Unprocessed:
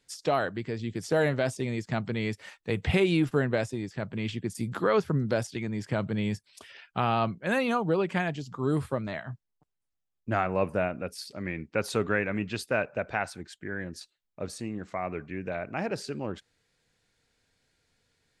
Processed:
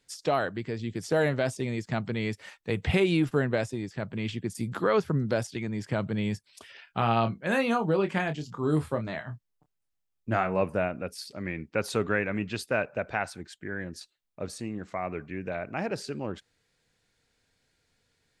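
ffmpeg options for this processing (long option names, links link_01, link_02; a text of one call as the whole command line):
ffmpeg -i in.wav -filter_complex "[0:a]asettb=1/sr,asplit=3[link_01][link_02][link_03];[link_01]atrim=end=6.844[link_04];[link_02]atrim=start=6.84:end=10.61,asetpts=PTS-STARTPTS,afade=type=in:duration=0.004:curve=qsin,afade=type=out:start_time=3.766:duration=0.004:curve=qsin,asplit=2[link_05][link_06];[link_06]adelay=26,volume=-8dB[link_07];[link_05][link_07]amix=inputs=2:normalize=0,atrim=end_sample=166257[link_08];[link_03]atrim=start=10.606[link_09];[link_04][link_08]acrossfade=duration=0.004:curve1=hsin:curve2=qsin[link_10];[link_10][link_09]acrossfade=duration=0.004:curve1=qsin:curve2=hsin" out.wav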